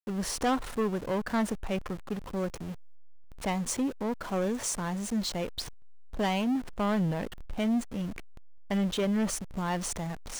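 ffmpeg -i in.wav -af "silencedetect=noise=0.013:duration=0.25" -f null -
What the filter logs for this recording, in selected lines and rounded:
silence_start: 2.73
silence_end: 3.42 | silence_duration: 0.69
silence_start: 5.68
silence_end: 6.14 | silence_duration: 0.45
silence_start: 8.19
silence_end: 8.71 | silence_duration: 0.51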